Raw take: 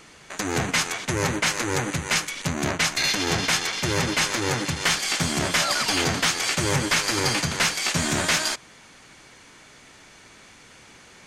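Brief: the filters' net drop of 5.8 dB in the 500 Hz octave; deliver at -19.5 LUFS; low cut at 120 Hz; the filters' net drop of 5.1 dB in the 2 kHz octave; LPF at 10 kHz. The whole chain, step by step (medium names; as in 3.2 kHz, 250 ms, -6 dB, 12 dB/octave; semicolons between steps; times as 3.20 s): high-pass 120 Hz; low-pass 10 kHz; peaking EQ 500 Hz -7.5 dB; peaking EQ 2 kHz -6 dB; trim +6 dB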